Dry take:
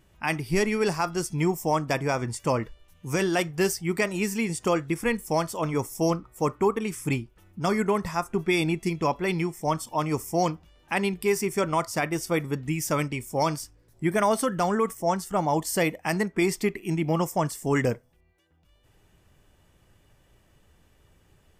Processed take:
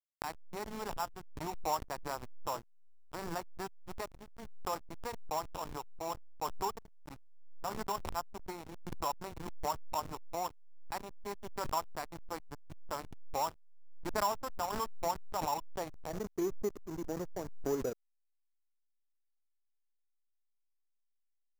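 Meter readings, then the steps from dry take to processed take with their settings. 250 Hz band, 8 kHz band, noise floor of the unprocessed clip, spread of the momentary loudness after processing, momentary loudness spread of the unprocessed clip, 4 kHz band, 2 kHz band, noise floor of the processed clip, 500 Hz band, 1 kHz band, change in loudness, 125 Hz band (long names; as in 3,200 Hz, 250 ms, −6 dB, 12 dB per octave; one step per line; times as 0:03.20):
−18.0 dB, −13.0 dB, −62 dBFS, 10 LU, 5 LU, −11.0 dB, −18.0 dB, −78 dBFS, −14.0 dB, −8.5 dB, −13.0 dB, −20.0 dB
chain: spectral envelope flattened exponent 0.6
band-pass filter sweep 930 Hz → 430 Hz, 0:15.67–0:16.34
slack as between gear wheels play −29.5 dBFS
sample-rate reduction 6,400 Hz, jitter 0%
background raised ahead of every attack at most 42 dB per second
level −5 dB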